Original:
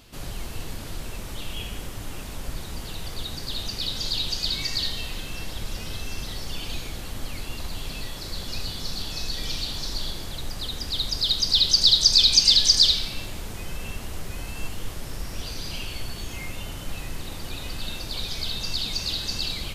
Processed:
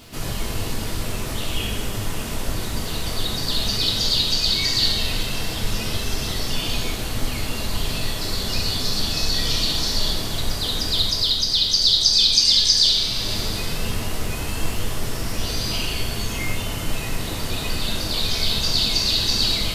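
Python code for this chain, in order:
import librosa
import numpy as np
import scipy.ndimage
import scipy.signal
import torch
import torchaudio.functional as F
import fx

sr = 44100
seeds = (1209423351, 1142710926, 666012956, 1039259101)

y = fx.rev_double_slope(x, sr, seeds[0], early_s=0.56, late_s=2.7, knee_db=-14, drr_db=-1.0)
y = fx.rider(y, sr, range_db=4, speed_s=0.5)
y = fx.dmg_crackle(y, sr, seeds[1], per_s=410.0, level_db=-44.0)
y = F.gain(torch.from_numpy(y), 1.5).numpy()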